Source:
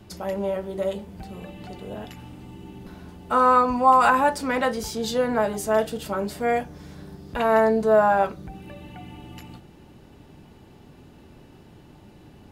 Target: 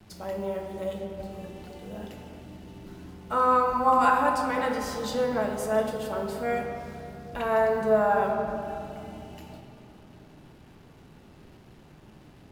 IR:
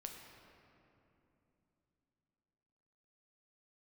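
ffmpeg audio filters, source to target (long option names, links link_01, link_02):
-filter_complex "[0:a]acrusher=bits=7:mix=0:aa=0.5[link_01];[1:a]atrim=start_sample=2205,asetrate=48510,aresample=44100[link_02];[link_01][link_02]afir=irnorm=-1:irlink=0"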